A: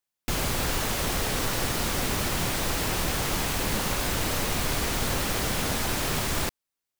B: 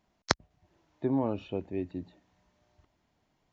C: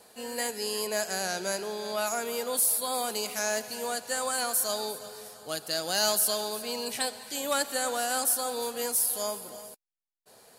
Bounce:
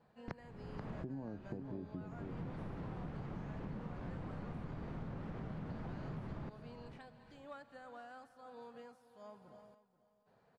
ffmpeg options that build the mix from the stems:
-filter_complex "[0:a]volume=-13.5dB,asplit=2[a][b];[b]volume=-16.5dB[c];[1:a]acompressor=threshold=-34dB:ratio=2.5,volume=-5dB,asplit=3[d][e][f];[e]volume=-9dB[g];[2:a]equalizer=f=290:w=0.35:g=-11.5,acompressor=threshold=-41dB:ratio=2.5,volume=-6.5dB,asplit=2[h][i];[i]volume=-16.5dB[j];[f]apad=whole_len=308491[k];[a][k]sidechaincompress=threshold=-56dB:ratio=10:attack=16:release=390[l];[c][g][j]amix=inputs=3:normalize=0,aecho=0:1:484|968|1452|1936:1|0.28|0.0784|0.022[m];[l][d][h][m]amix=inputs=4:normalize=0,lowpass=1.3k,equalizer=f=160:t=o:w=1.4:g=12.5,acompressor=threshold=-41dB:ratio=6"

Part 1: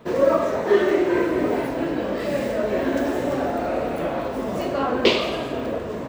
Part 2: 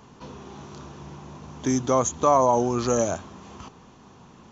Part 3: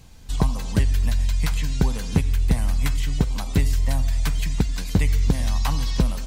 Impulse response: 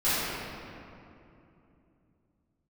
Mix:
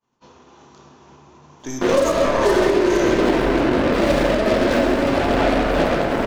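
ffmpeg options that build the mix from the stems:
-filter_complex "[0:a]highshelf=f=7k:g=-10,acrusher=bits=3:mix=0:aa=0.5,adelay=1750,volume=3dB,asplit=2[a][b];[b]volume=-14.5dB[c];[1:a]agate=range=-33dB:threshold=-37dB:ratio=3:detection=peak,lowshelf=f=240:g=-9.5,aeval=exprs='(tanh(5.01*val(0)+0.75)-tanh(0.75))/5.01':c=same,volume=1dB,asplit=2[d][e];[e]volume=-14.5dB[f];[2:a]adelay=1600,volume=-16.5dB,asplit=2[g][h];[h]volume=-11.5dB[i];[3:a]atrim=start_sample=2205[j];[c][f][i]amix=inputs=3:normalize=0[k];[k][j]afir=irnorm=-1:irlink=0[l];[a][d][g][l]amix=inputs=4:normalize=0,alimiter=limit=-7dB:level=0:latency=1:release=298"

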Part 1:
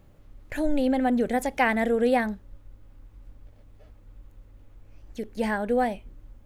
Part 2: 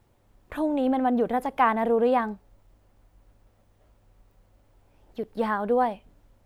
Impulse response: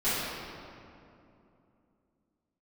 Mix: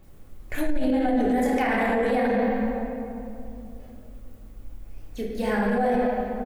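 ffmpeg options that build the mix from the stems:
-filter_complex "[0:a]volume=-1.5dB,asplit=2[a][b];[b]volume=-7.5dB[c];[1:a]acompressor=threshold=-31dB:ratio=6,crystalizer=i=7.5:c=0,adelay=28,volume=-8dB,asplit=2[d][e];[e]apad=whole_len=284506[f];[a][f]sidechaincompress=threshold=-40dB:ratio=8:attack=16:release=390[g];[2:a]atrim=start_sample=2205[h];[c][h]afir=irnorm=-1:irlink=0[i];[g][d][i]amix=inputs=3:normalize=0,alimiter=limit=-15.5dB:level=0:latency=1:release=14"

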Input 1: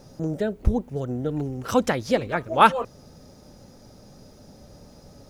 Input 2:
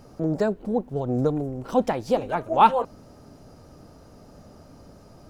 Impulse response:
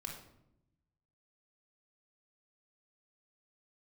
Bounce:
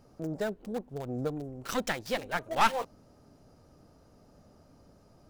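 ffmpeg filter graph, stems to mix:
-filter_complex "[0:a]highpass=1k,aeval=exprs='val(0)*gte(abs(val(0)),0.0168)':c=same,aeval=exprs='(tanh(12.6*val(0)+0.8)-tanh(0.8))/12.6':c=same,volume=0.5dB[a];[1:a]volume=-10.5dB[b];[a][b]amix=inputs=2:normalize=0"

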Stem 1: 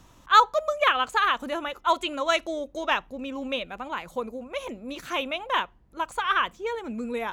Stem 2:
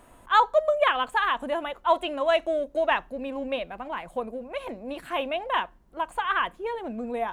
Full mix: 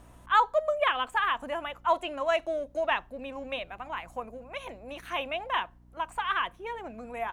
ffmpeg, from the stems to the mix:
-filter_complex "[0:a]aeval=exprs='val(0)+0.00708*(sin(2*PI*60*n/s)+sin(2*PI*2*60*n/s)/2+sin(2*PI*3*60*n/s)/3+sin(2*PI*4*60*n/s)/4+sin(2*PI*5*60*n/s)/5)':c=same,volume=-10dB[a];[1:a]volume=-1,adelay=0.4,volume=-4dB,asplit=2[b][c];[c]apad=whole_len=323186[d];[a][d]sidechaincompress=threshold=-29dB:ratio=8:attack=41:release=1050[e];[e][b]amix=inputs=2:normalize=0"

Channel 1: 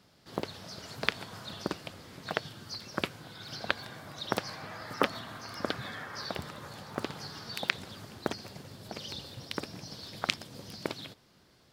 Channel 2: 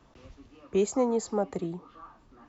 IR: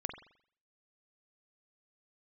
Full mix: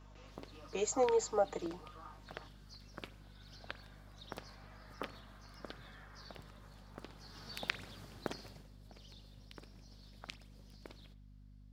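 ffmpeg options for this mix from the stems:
-filter_complex "[0:a]volume=-10.5dB,afade=t=in:st=7.2:d=0.29:silence=0.375837,afade=t=out:st=8.43:d=0.28:silence=0.281838,asplit=2[a][b];[b]volume=-7dB[c];[1:a]highpass=450,aecho=1:1:6.5:0.75,volume=-3.5dB[d];[2:a]atrim=start_sample=2205[e];[c][e]afir=irnorm=-1:irlink=0[f];[a][d][f]amix=inputs=3:normalize=0,aeval=exprs='val(0)+0.00158*(sin(2*PI*50*n/s)+sin(2*PI*2*50*n/s)/2+sin(2*PI*3*50*n/s)/3+sin(2*PI*4*50*n/s)/4+sin(2*PI*5*50*n/s)/5)':c=same"

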